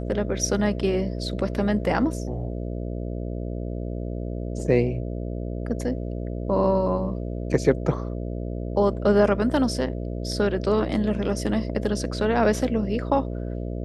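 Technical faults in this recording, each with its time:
buzz 60 Hz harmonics 11 -30 dBFS

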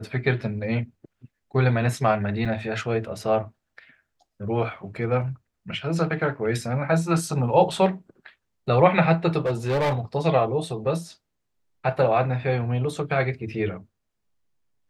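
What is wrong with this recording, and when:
2.45–2.46 gap 5.3 ms
9.46–9.99 clipped -19.5 dBFS

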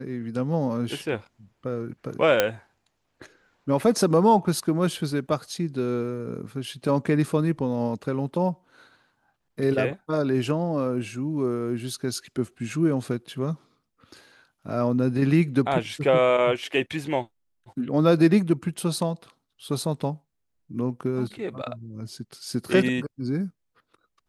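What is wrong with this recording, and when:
2.4 pop -4 dBFS

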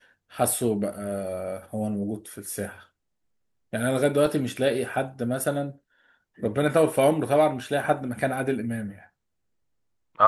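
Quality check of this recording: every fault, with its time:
4.26 gap 2.8 ms

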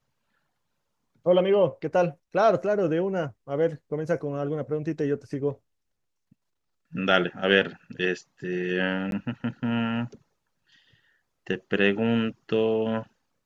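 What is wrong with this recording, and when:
9.11–9.12 gap 12 ms

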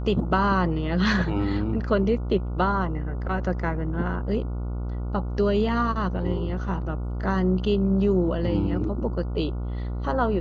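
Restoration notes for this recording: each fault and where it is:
buzz 60 Hz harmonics 24 -29 dBFS

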